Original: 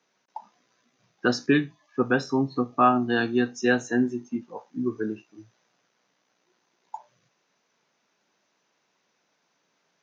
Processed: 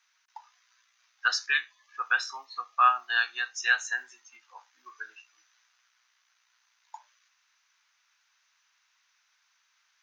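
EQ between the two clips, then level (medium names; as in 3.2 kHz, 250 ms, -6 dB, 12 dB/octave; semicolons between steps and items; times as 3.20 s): high-pass 1.2 kHz 24 dB/octave; +3.5 dB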